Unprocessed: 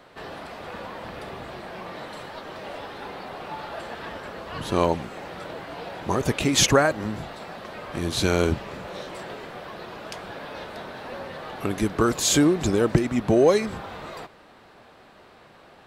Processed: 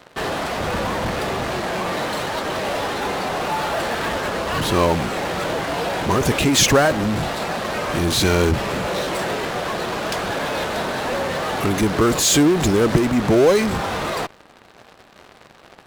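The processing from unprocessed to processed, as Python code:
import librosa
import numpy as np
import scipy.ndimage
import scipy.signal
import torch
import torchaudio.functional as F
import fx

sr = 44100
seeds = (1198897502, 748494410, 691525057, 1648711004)

p1 = fx.low_shelf(x, sr, hz=160.0, db=9.5, at=(0.56, 1.11))
p2 = fx.fuzz(p1, sr, gain_db=39.0, gate_db=-45.0)
y = p1 + (p2 * 10.0 ** (-8.5 / 20.0))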